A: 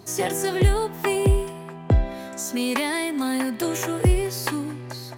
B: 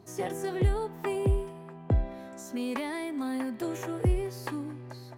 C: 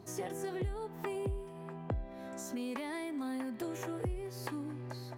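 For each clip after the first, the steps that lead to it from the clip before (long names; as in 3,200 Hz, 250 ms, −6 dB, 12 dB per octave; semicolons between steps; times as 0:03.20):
high-shelf EQ 2,100 Hz −10 dB; level −7 dB
downward compressor 3 to 1, threshold −39 dBFS, peak gain reduction 14.5 dB; level +1 dB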